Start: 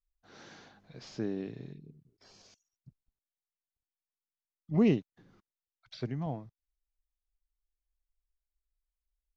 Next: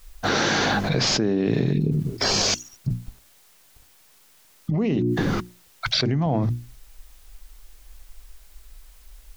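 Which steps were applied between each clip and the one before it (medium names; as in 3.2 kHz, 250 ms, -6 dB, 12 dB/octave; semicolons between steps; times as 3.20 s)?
hum notches 60/120/180/240/300/360 Hz; level flattener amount 100%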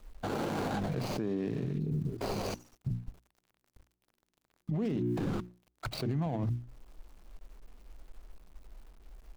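median filter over 25 samples; peak limiter -20.5 dBFS, peak gain reduction 10 dB; trim -5 dB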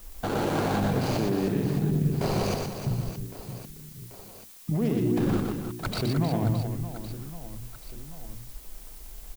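added noise blue -57 dBFS; reverse bouncing-ball echo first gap 120 ms, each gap 1.6×, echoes 5; trim +5.5 dB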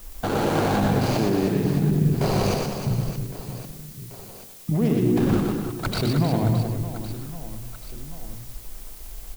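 modulated delay 102 ms, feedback 56%, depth 112 cents, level -10.5 dB; trim +4 dB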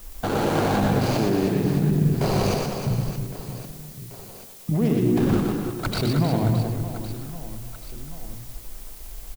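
speakerphone echo 330 ms, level -13 dB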